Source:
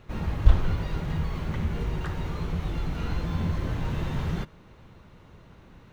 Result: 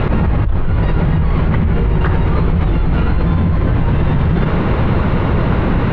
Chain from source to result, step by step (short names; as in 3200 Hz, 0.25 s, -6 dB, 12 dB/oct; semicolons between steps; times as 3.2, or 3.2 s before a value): air absorption 390 m; fast leveller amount 100%; gain -2 dB